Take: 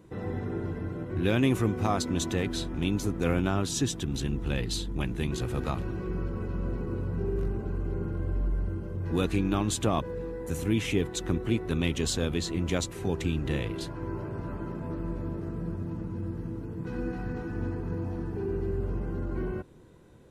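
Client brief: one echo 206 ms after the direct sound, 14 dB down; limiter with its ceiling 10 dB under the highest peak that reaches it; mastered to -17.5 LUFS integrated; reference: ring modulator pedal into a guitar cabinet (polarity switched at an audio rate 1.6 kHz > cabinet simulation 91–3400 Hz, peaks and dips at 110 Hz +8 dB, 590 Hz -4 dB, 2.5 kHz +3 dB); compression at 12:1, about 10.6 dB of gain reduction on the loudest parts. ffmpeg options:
-af "acompressor=threshold=0.0282:ratio=12,alimiter=level_in=1.68:limit=0.0631:level=0:latency=1,volume=0.596,aecho=1:1:206:0.2,aeval=exprs='val(0)*sgn(sin(2*PI*1600*n/s))':c=same,highpass=91,equalizer=f=110:t=q:w=4:g=8,equalizer=f=590:t=q:w=4:g=-4,equalizer=f=2500:t=q:w=4:g=3,lowpass=f=3400:w=0.5412,lowpass=f=3400:w=1.3066,volume=8.41"

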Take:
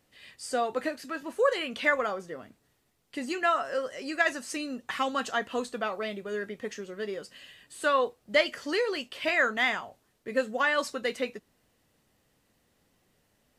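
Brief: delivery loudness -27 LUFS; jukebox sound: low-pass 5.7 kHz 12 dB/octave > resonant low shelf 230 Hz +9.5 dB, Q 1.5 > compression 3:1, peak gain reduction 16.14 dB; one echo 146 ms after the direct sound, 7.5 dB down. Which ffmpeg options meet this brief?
-af "lowpass=5700,lowshelf=f=230:t=q:w=1.5:g=9.5,aecho=1:1:146:0.422,acompressor=threshold=0.00891:ratio=3,volume=5.01"

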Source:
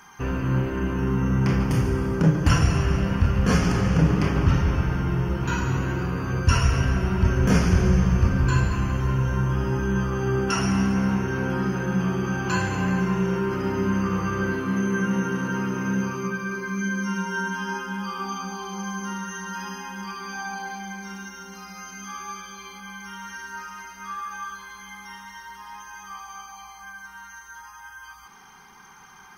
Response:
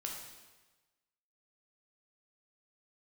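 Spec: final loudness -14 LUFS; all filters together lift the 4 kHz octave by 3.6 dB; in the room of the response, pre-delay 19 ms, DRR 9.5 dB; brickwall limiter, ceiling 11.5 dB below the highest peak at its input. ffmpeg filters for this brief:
-filter_complex "[0:a]equalizer=f=4000:t=o:g=5.5,alimiter=limit=0.141:level=0:latency=1,asplit=2[s0][s1];[1:a]atrim=start_sample=2205,adelay=19[s2];[s1][s2]afir=irnorm=-1:irlink=0,volume=0.355[s3];[s0][s3]amix=inputs=2:normalize=0,volume=4.73"

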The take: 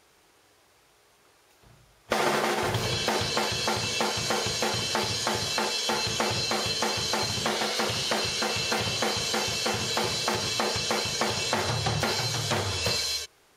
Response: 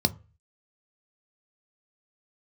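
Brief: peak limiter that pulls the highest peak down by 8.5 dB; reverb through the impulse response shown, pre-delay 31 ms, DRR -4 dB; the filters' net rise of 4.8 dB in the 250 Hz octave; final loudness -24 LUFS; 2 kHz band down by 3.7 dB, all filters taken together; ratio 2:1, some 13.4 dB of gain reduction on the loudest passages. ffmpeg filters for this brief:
-filter_complex "[0:a]equalizer=f=250:t=o:g=6.5,equalizer=f=2000:t=o:g=-5,acompressor=threshold=0.00355:ratio=2,alimiter=level_in=2.51:limit=0.0631:level=0:latency=1,volume=0.398,asplit=2[s0][s1];[1:a]atrim=start_sample=2205,adelay=31[s2];[s1][s2]afir=irnorm=-1:irlink=0,volume=0.501[s3];[s0][s3]amix=inputs=2:normalize=0,volume=2.37"

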